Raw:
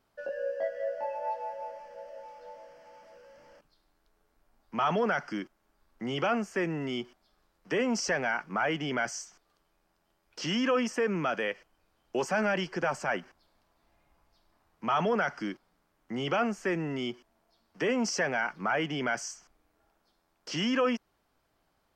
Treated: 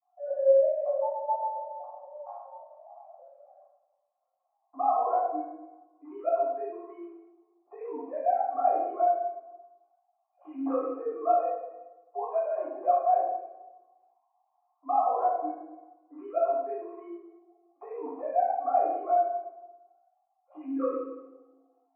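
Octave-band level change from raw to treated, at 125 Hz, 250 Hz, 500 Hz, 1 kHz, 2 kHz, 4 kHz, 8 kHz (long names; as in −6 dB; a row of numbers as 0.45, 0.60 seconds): below −35 dB, −7.0 dB, +4.0 dB, +6.5 dB, below −20 dB, below −40 dB, below −35 dB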